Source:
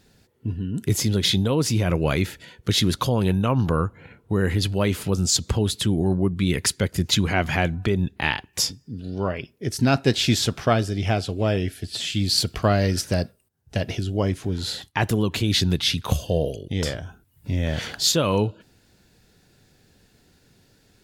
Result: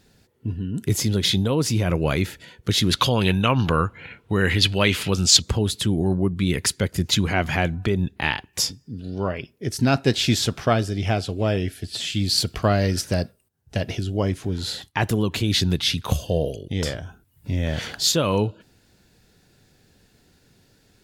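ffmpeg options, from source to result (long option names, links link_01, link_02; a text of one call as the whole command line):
ffmpeg -i in.wav -filter_complex "[0:a]asettb=1/sr,asplit=3[link_01][link_02][link_03];[link_01]atrim=end=2.914[link_04];[link_02]atrim=start=2.91:end=5.42,asetpts=PTS-STARTPTS,afade=type=in:duration=0.004:curve=qsin,afade=type=out:start_time=2.506:duration=0.004:curve=qsin,equalizer=frequency=2800:width=0.64:gain=12[link_05];[link_03]atrim=start=5.416[link_06];[link_04][link_05]acrossfade=duration=0.004:curve1=hsin:curve2=qsin[link_07];[link_07][link_06]acrossfade=duration=0.004:curve1=qsin:curve2=hsin" out.wav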